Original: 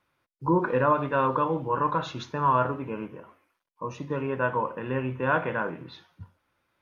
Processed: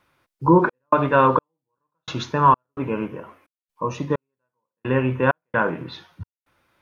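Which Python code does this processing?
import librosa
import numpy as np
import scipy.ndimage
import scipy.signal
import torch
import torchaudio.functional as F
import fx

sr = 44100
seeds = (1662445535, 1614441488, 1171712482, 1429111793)

y = fx.step_gate(x, sr, bpm=65, pattern='xxx.xx...xx.', floor_db=-60.0, edge_ms=4.5)
y = F.gain(torch.from_numpy(y), 8.5).numpy()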